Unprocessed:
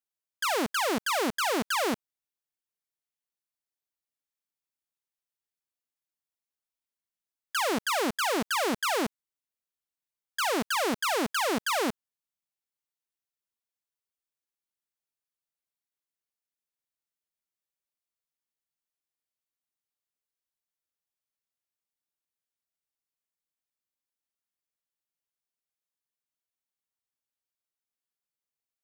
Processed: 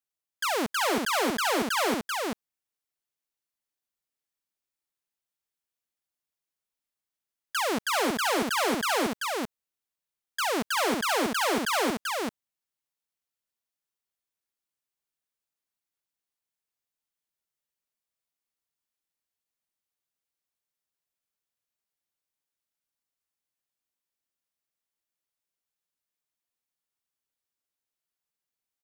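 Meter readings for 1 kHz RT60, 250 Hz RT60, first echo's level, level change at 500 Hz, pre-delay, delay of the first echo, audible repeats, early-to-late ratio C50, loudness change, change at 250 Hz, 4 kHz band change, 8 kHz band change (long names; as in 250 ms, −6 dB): no reverb audible, no reverb audible, −3.0 dB, +2.0 dB, no reverb audible, 387 ms, 1, no reverb audible, +1.0 dB, +1.5 dB, +2.0 dB, +1.5 dB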